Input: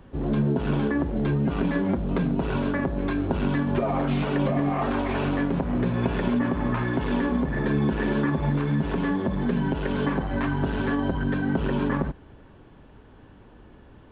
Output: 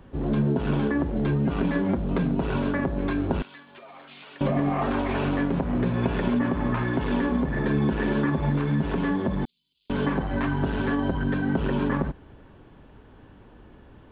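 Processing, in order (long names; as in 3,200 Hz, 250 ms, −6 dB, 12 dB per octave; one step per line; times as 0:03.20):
0:03.42–0:04.41: first difference
0:09.45–0:09.90: inverse Chebyshev high-pass filter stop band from 1,800 Hz, stop band 60 dB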